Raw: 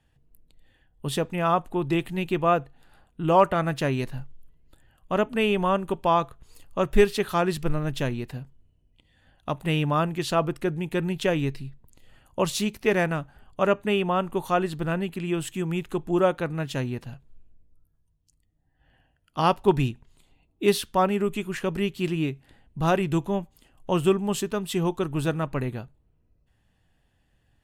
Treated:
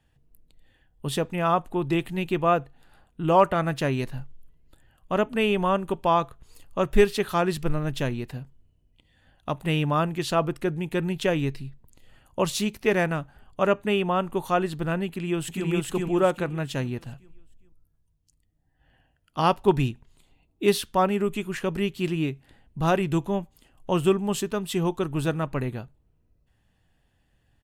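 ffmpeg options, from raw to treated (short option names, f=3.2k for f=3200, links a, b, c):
-filter_complex "[0:a]asplit=2[a][b];[b]afade=t=in:st=15.07:d=0.01,afade=t=out:st=15.67:d=0.01,aecho=0:1:410|820|1230|1640|2050:0.944061|0.330421|0.115647|0.0404766|0.0141668[c];[a][c]amix=inputs=2:normalize=0"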